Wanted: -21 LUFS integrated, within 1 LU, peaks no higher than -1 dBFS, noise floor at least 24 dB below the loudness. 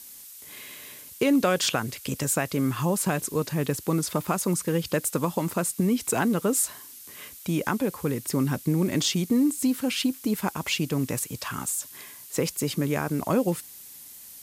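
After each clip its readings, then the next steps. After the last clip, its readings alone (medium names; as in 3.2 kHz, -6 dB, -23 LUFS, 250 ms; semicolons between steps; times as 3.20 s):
noise floor -45 dBFS; noise floor target -50 dBFS; loudness -26.0 LUFS; peak level -9.5 dBFS; loudness target -21.0 LUFS
-> noise print and reduce 6 dB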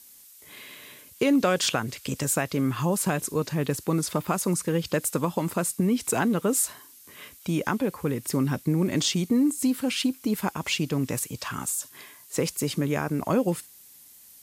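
noise floor -51 dBFS; loudness -26.5 LUFS; peak level -9.5 dBFS; loudness target -21.0 LUFS
-> trim +5.5 dB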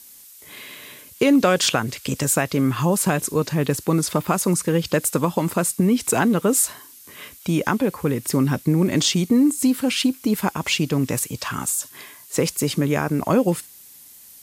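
loudness -21.0 LUFS; peak level -4.0 dBFS; noise floor -46 dBFS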